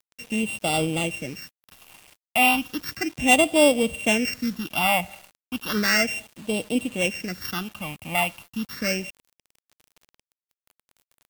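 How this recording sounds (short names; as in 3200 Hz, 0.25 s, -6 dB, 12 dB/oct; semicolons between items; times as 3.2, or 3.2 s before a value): a buzz of ramps at a fixed pitch in blocks of 16 samples; phasing stages 6, 0.34 Hz, lowest notch 400–1700 Hz; a quantiser's noise floor 8-bit, dither none; Vorbis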